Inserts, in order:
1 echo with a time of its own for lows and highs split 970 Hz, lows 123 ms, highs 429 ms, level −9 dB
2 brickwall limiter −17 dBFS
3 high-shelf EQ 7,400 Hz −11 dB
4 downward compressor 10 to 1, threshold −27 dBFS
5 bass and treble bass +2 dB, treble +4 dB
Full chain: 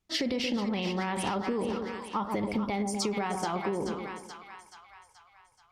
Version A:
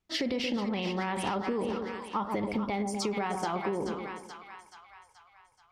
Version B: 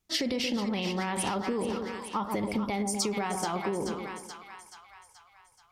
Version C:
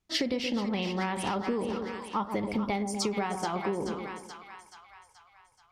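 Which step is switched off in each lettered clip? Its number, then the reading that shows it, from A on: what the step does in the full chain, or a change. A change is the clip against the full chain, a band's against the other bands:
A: 5, 8 kHz band −3.0 dB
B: 3, 8 kHz band +5.0 dB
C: 2, change in crest factor +2.0 dB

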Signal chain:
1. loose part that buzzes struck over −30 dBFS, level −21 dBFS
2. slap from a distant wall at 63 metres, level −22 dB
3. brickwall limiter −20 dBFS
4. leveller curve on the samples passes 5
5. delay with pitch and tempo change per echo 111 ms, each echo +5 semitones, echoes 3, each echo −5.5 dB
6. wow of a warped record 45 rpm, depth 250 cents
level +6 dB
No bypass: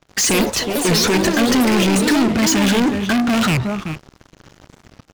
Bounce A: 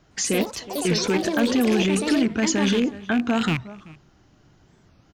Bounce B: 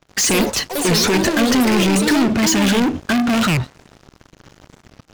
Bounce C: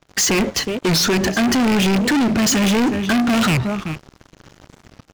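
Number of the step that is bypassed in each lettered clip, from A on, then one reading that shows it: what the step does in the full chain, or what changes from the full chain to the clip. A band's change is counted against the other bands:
4, change in crest factor +4.0 dB
2, change in momentary loudness spread −2 LU
5, change in integrated loudness −1.0 LU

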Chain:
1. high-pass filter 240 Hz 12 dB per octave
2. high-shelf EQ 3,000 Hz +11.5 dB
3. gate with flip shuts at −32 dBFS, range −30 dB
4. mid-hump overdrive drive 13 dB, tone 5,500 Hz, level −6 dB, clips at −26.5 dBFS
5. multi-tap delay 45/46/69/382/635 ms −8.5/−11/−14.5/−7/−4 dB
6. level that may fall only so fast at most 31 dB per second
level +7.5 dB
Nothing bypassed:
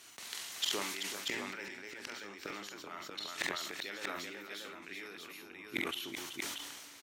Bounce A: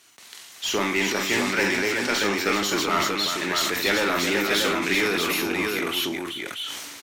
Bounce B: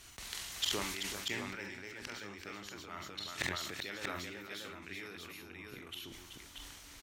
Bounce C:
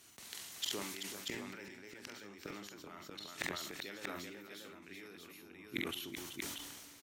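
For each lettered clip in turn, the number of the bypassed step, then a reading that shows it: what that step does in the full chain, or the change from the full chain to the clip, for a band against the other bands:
3, change in crest factor −7.5 dB
1, 125 Hz band +8.5 dB
4, change in crest factor +3.5 dB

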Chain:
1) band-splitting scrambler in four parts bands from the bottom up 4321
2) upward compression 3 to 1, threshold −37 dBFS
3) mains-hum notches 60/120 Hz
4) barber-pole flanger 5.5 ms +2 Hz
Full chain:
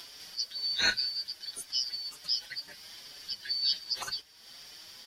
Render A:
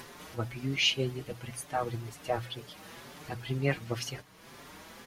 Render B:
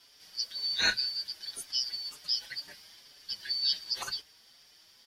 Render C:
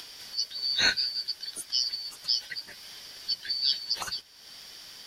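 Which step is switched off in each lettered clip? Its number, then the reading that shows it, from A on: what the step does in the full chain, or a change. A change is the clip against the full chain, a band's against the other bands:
1, 500 Hz band +19.0 dB
2, change in momentary loudness spread −5 LU
4, change in integrated loudness +3.0 LU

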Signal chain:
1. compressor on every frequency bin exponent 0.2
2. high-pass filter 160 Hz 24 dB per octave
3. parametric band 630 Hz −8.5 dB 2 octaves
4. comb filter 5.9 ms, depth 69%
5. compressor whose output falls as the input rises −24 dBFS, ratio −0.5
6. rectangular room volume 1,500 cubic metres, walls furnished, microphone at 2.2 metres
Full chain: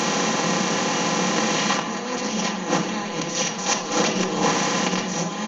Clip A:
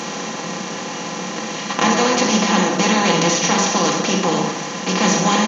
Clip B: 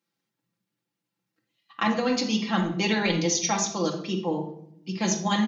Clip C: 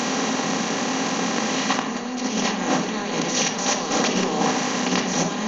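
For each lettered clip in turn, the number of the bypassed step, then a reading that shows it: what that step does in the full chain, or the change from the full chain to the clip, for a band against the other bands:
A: 5, change in crest factor −2.5 dB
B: 1, 250 Hz band +4.5 dB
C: 4, 250 Hz band +2.0 dB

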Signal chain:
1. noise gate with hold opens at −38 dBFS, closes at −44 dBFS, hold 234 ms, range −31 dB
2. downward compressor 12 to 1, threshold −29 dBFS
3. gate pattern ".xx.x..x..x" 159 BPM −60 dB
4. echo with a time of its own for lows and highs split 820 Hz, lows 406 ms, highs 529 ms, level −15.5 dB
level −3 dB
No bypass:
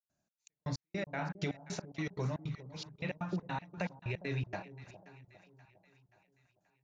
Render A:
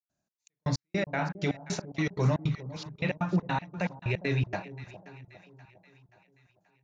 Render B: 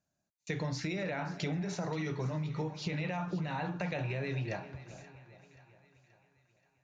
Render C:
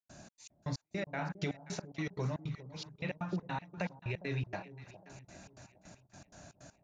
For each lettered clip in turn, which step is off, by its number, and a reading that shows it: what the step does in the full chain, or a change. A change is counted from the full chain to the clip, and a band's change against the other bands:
2, average gain reduction 7.0 dB
3, change in integrated loudness +3.5 LU
1, change in momentary loudness spread +5 LU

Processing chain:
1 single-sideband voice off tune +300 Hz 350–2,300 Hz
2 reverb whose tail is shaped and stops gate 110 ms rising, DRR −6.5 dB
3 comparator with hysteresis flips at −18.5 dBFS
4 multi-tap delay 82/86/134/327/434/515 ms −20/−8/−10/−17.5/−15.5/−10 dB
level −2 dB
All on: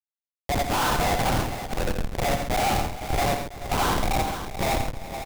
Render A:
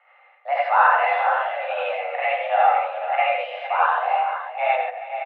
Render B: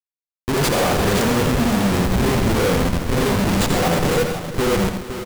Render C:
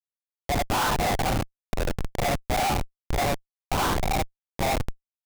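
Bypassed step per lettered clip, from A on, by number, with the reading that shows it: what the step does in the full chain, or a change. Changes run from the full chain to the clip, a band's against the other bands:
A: 3, change in crest factor +6.0 dB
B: 1, 250 Hz band +6.5 dB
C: 4, change in momentary loudness spread +2 LU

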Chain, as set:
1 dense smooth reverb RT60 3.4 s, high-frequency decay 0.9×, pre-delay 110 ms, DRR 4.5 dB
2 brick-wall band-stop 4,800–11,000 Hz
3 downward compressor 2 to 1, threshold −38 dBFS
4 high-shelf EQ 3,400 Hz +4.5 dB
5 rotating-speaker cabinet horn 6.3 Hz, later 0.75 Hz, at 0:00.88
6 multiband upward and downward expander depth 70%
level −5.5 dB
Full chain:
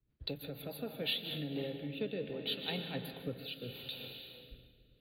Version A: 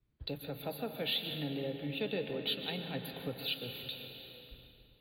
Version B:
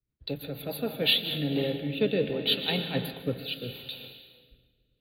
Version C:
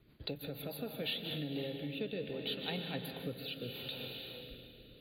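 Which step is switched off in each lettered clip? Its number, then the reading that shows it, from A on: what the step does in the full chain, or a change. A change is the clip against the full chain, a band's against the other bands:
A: 5, 1 kHz band +2.0 dB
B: 3, average gain reduction 7.0 dB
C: 6, change in crest factor −2.0 dB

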